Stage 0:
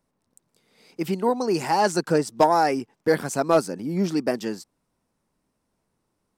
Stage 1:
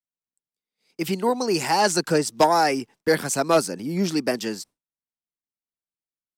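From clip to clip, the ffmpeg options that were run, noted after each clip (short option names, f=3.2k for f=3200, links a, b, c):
-filter_complex "[0:a]agate=range=-33dB:threshold=-43dB:ratio=3:detection=peak,acrossover=split=420|700|1900[a][b][c][d];[d]acontrast=80[e];[a][b][c][e]amix=inputs=4:normalize=0"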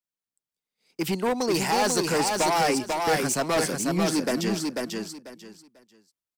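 -af "asoftclip=type=hard:threshold=-21dB,aecho=1:1:493|986|1479:0.668|0.147|0.0323"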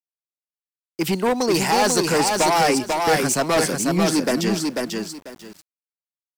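-af "aeval=exprs='val(0)*gte(abs(val(0)),0.00422)':c=same,volume=5dB"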